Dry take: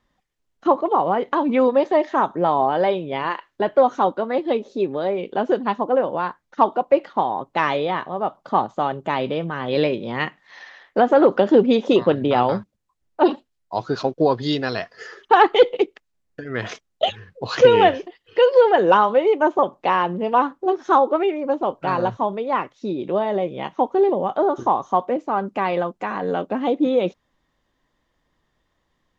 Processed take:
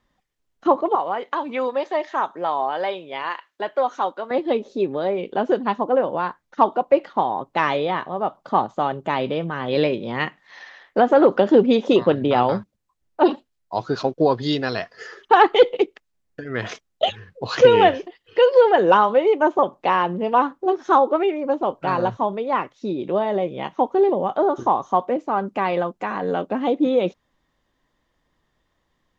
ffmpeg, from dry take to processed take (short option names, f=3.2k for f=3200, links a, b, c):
-filter_complex "[0:a]asettb=1/sr,asplit=3[a][b][c];[a]atrim=end=0.954[d];[b]atrim=start=0.95:end=4.31,asetpts=PTS-STARTPTS,afade=t=in:d=0.004:c=qsin,afade=t=out:st=3.356:d=0.004:c=qsin,highpass=f=980:p=1[e];[c]atrim=start=4.306[f];[d][e]acrossfade=d=0.004:c1=hsin:c2=qsin[g];[g][f]acrossfade=d=0.004:c1=qsin:c2=hsin"